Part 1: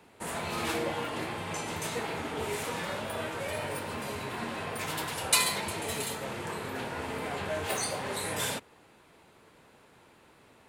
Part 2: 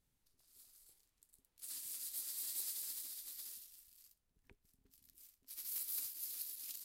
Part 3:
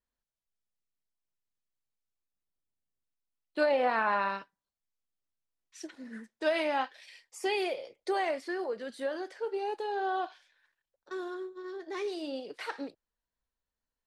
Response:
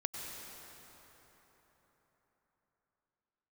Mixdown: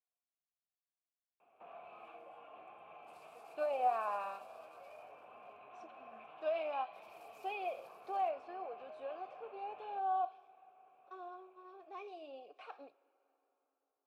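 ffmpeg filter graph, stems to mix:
-filter_complex "[0:a]lowpass=f=3k:w=0.5412,lowpass=f=3k:w=1.3066,acompressor=threshold=-41dB:ratio=4,adelay=1400,volume=-1.5dB[a];[1:a]adelay=1450,volume=2.5dB[b];[2:a]bandreject=f=4.6k:w=17,volume=0dB,asplit=2[c][d];[d]volume=-21.5dB[e];[3:a]atrim=start_sample=2205[f];[e][f]afir=irnorm=-1:irlink=0[g];[a][b][c][g]amix=inputs=4:normalize=0,asplit=3[h][i][j];[h]bandpass=f=730:t=q:w=8,volume=0dB[k];[i]bandpass=f=1.09k:t=q:w=8,volume=-6dB[l];[j]bandpass=f=2.44k:t=q:w=8,volume=-9dB[m];[k][l][m]amix=inputs=3:normalize=0"

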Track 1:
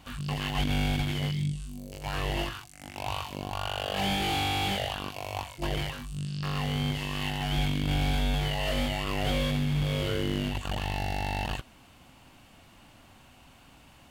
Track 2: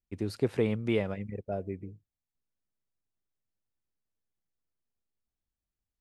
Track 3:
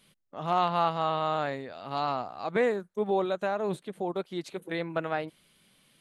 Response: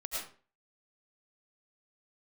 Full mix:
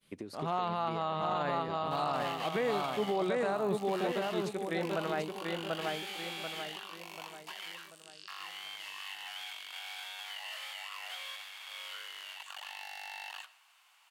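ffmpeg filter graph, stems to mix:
-filter_complex "[0:a]highpass=f=960:w=0.5412,highpass=f=960:w=1.3066,adelay=1850,volume=-6.5dB,asplit=2[a][b];[b]volume=-19.5dB[c];[1:a]volume=2.5dB[d];[2:a]agate=range=-33dB:threshold=-60dB:ratio=3:detection=peak,volume=-2dB,asplit=2[e][f];[f]volume=-4dB[g];[a][d]amix=inputs=2:normalize=0,highpass=210,acompressor=threshold=-39dB:ratio=12,volume=0dB[h];[3:a]atrim=start_sample=2205[i];[c][i]afir=irnorm=-1:irlink=0[j];[g]aecho=0:1:738|1476|2214|2952|3690|4428:1|0.43|0.185|0.0795|0.0342|0.0147[k];[e][h][j][k]amix=inputs=4:normalize=0,alimiter=limit=-23dB:level=0:latency=1:release=23"

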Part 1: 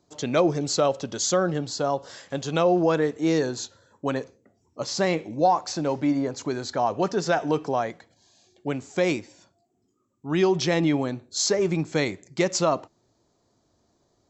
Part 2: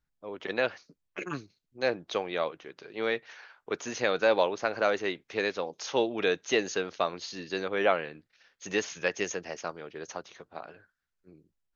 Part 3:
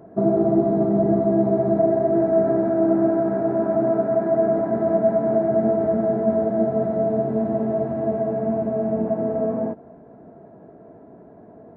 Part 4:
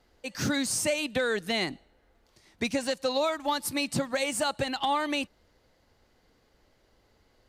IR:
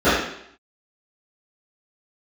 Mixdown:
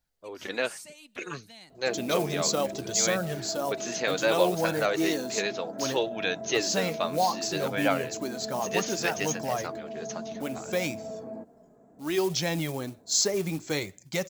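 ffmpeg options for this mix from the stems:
-filter_complex "[0:a]equalizer=f=88:t=o:w=1.5:g=3,acrusher=bits=6:mode=log:mix=0:aa=0.000001,adelay=1750,volume=-3dB[a];[1:a]volume=1.5dB[b];[2:a]adelay=1700,volume=-9dB[c];[3:a]volume=-19.5dB[d];[c][d]amix=inputs=2:normalize=0,alimiter=level_in=3.5dB:limit=-24dB:level=0:latency=1,volume=-3.5dB,volume=0dB[e];[a][b][e]amix=inputs=3:normalize=0,highshelf=f=3.8k:g=11,flanger=delay=1.2:depth=3.6:regen=-44:speed=0.64:shape=sinusoidal"

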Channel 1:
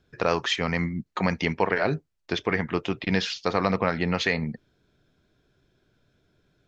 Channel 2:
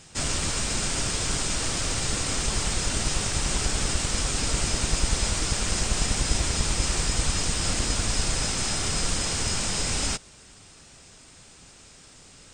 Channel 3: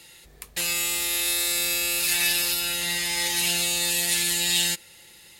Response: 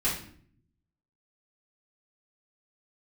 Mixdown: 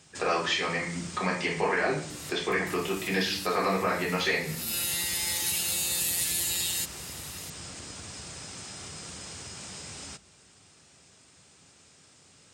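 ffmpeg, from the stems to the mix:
-filter_complex "[0:a]bass=f=250:g=-14,treble=f=4k:g=3,volume=-7dB,asplit=3[a][b][c];[b]volume=-3.5dB[d];[1:a]highpass=f=75:w=0.5412,highpass=f=75:w=1.3066,acompressor=threshold=-31dB:ratio=6,volume=-7.5dB,asplit=2[e][f];[f]volume=-23dB[g];[2:a]acompressor=threshold=-33dB:ratio=6,asoftclip=type=hard:threshold=-24.5dB,crystalizer=i=1.5:c=0,adelay=2100,volume=0dB[h];[c]apad=whole_len=330649[i];[h][i]sidechaincompress=threshold=-54dB:ratio=8:attack=16:release=230[j];[a][e]amix=inputs=2:normalize=0,acompressor=threshold=-37dB:ratio=6,volume=0dB[k];[3:a]atrim=start_sample=2205[l];[d][g]amix=inputs=2:normalize=0[m];[m][l]afir=irnorm=-1:irlink=0[n];[j][k][n]amix=inputs=3:normalize=0"

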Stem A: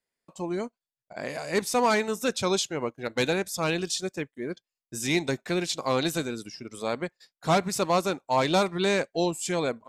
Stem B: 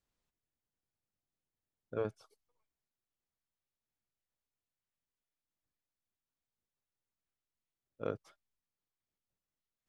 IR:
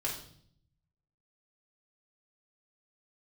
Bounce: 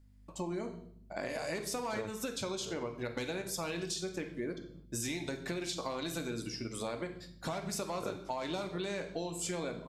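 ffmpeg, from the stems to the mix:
-filter_complex "[0:a]acompressor=threshold=-32dB:ratio=6,aeval=exprs='val(0)+0.001*(sin(2*PI*50*n/s)+sin(2*PI*2*50*n/s)/2+sin(2*PI*3*50*n/s)/3+sin(2*PI*4*50*n/s)/4+sin(2*PI*5*50*n/s)/5)':c=same,volume=-3.5dB,asplit=2[a][b];[b]volume=-3.5dB[c];[1:a]volume=2dB,asplit=2[d][e];[e]volume=-13.5dB[f];[2:a]atrim=start_sample=2205[g];[c][g]afir=irnorm=-1:irlink=0[h];[f]aecho=0:1:693|1386|2079|2772|3465|4158:1|0.4|0.16|0.064|0.0256|0.0102[i];[a][d][h][i]amix=inputs=4:normalize=0,acompressor=threshold=-34dB:ratio=4"

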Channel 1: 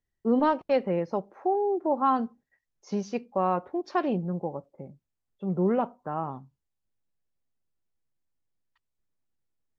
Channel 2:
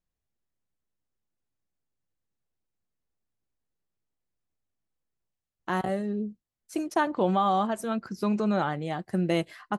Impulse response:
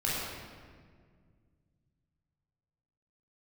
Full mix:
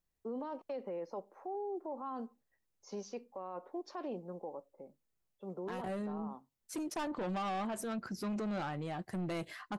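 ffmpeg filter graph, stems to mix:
-filter_complex "[0:a]equalizer=f=125:t=o:w=1:g=-10,equalizer=f=250:t=o:w=1:g=7,equalizer=f=500:t=o:w=1:g=10,equalizer=f=1k:t=o:w=1:g=9,acrossover=split=350[a][b];[b]acompressor=threshold=-17dB:ratio=3[c];[a][c]amix=inputs=2:normalize=0,crystalizer=i=5.5:c=0,volume=-19dB[d];[1:a]asoftclip=type=tanh:threshold=-27dB,volume=-0.5dB[e];[d][e]amix=inputs=2:normalize=0,alimiter=level_in=9.5dB:limit=-24dB:level=0:latency=1:release=22,volume=-9.5dB"

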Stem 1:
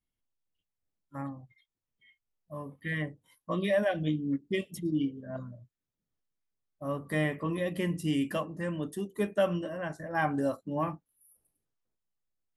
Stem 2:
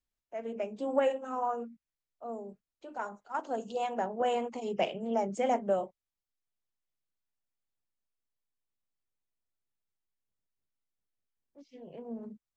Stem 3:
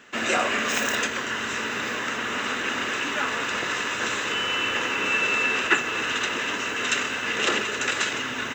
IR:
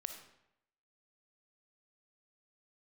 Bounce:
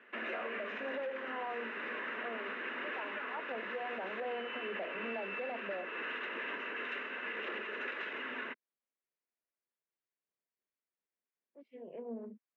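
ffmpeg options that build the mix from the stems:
-filter_complex "[1:a]volume=2dB[a];[2:a]volume=-6.5dB[b];[a][b]amix=inputs=2:normalize=0,asoftclip=type=tanh:threshold=-24.5dB,highpass=f=240:w=0.5412,highpass=f=240:w=1.3066,equalizer=f=290:t=q:w=4:g=-6,equalizer=f=800:t=q:w=4:g=-6,equalizer=f=1.3k:t=q:w=4:g=-4,lowpass=f=2.4k:w=0.5412,lowpass=f=2.4k:w=1.3066,alimiter=level_in=6.5dB:limit=-24dB:level=0:latency=1:release=374,volume=-6.5dB"

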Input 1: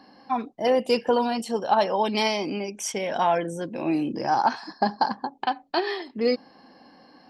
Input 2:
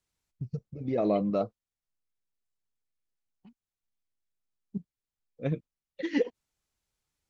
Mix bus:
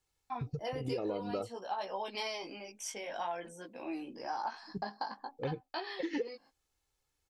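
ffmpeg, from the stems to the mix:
-filter_complex "[0:a]highpass=f=600:p=1,agate=range=-29dB:threshold=-43dB:ratio=16:detection=peak,flanger=delay=15.5:depth=3.5:speed=0.52,volume=-7.5dB[a];[1:a]aecho=1:1:2.3:0.58,volume=0dB[b];[a][b]amix=inputs=2:normalize=0,acompressor=threshold=-33dB:ratio=6"

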